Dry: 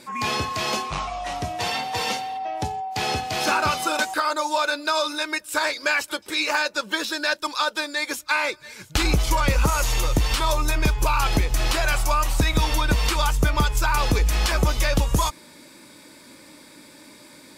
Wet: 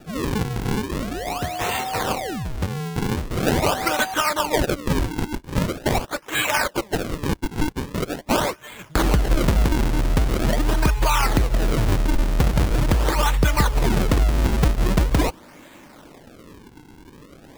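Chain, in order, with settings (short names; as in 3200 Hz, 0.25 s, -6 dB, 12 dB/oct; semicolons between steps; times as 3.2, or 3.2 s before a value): 5.36–8.03 HPF 350 Hz 12 dB/oct; decimation with a swept rate 41×, swing 160% 0.43 Hz; gain +2 dB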